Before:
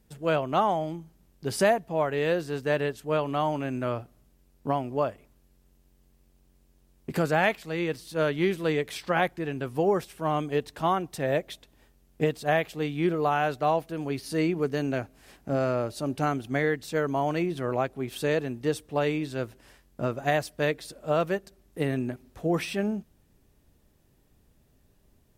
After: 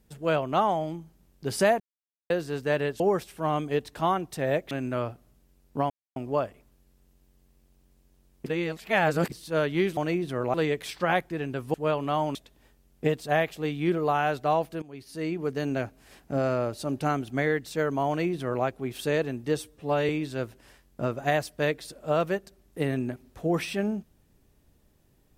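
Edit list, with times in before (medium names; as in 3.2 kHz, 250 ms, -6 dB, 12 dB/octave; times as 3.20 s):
1.80–2.30 s: mute
3.00–3.61 s: swap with 9.81–11.52 s
4.80 s: insert silence 0.26 s
7.10–7.96 s: reverse
13.99–14.91 s: fade in, from -18 dB
17.25–17.82 s: copy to 8.61 s
18.75–19.09 s: stretch 1.5×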